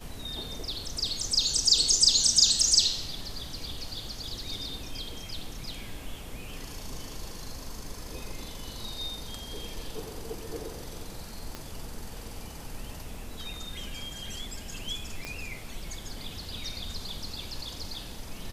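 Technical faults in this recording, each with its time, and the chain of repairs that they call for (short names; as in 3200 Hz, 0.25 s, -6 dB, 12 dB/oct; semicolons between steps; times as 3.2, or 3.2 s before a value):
11.55 pop -21 dBFS
15.25 pop -20 dBFS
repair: de-click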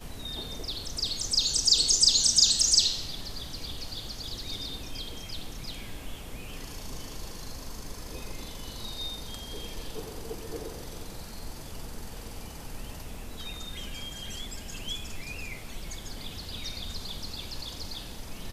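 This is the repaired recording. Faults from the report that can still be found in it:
11.55 pop
15.25 pop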